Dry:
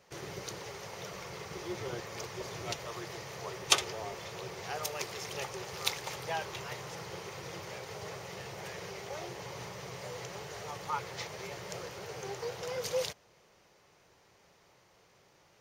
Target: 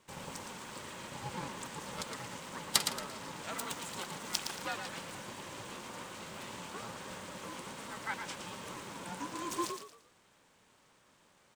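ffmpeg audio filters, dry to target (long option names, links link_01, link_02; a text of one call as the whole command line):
ffmpeg -i in.wav -filter_complex "[0:a]aeval=exprs='val(0)*sin(2*PI*260*n/s)':channel_layout=same,asetrate=59535,aresample=44100,asplit=5[link_01][link_02][link_03][link_04][link_05];[link_02]adelay=114,afreqshift=39,volume=-7dB[link_06];[link_03]adelay=228,afreqshift=78,volume=-17.2dB[link_07];[link_04]adelay=342,afreqshift=117,volume=-27.3dB[link_08];[link_05]adelay=456,afreqshift=156,volume=-37.5dB[link_09];[link_01][link_06][link_07][link_08][link_09]amix=inputs=5:normalize=0" out.wav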